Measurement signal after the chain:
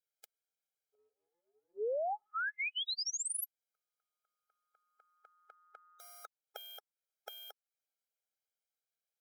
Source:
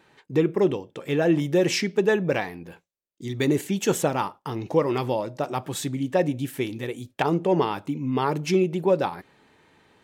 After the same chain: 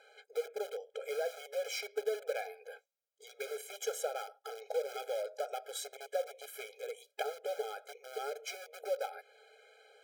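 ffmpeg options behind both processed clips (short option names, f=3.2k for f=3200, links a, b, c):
-filter_complex "[0:a]asplit=2[a][b];[b]aeval=exprs='(mod(12.6*val(0)+1,2)-1)/12.6':c=same,volume=-7.5dB[c];[a][c]amix=inputs=2:normalize=0,acompressor=threshold=-37dB:ratio=2,equalizer=f=62:t=o:w=2.5:g=14,afftfilt=real='re*eq(mod(floor(b*sr/1024/420),2),1)':imag='im*eq(mod(floor(b*sr/1024/420),2),1)':win_size=1024:overlap=0.75,volume=-2dB"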